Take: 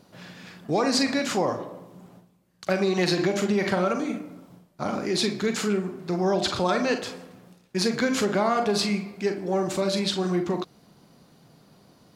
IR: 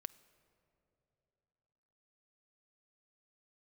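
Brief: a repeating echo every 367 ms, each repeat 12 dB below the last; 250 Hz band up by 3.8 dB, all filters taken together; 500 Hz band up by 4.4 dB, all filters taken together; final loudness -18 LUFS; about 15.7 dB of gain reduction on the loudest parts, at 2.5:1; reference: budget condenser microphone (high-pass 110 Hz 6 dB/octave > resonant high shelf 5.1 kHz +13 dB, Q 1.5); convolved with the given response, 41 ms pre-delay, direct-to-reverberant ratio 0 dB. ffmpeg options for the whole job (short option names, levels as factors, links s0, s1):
-filter_complex "[0:a]equalizer=f=250:t=o:g=5,equalizer=f=500:t=o:g=4.5,acompressor=threshold=0.01:ratio=2.5,aecho=1:1:367|734|1101:0.251|0.0628|0.0157,asplit=2[s0][s1];[1:a]atrim=start_sample=2205,adelay=41[s2];[s1][s2]afir=irnorm=-1:irlink=0,volume=1.68[s3];[s0][s3]amix=inputs=2:normalize=0,highpass=f=110:p=1,highshelf=f=5100:t=q:w=1.5:g=13,volume=5.62"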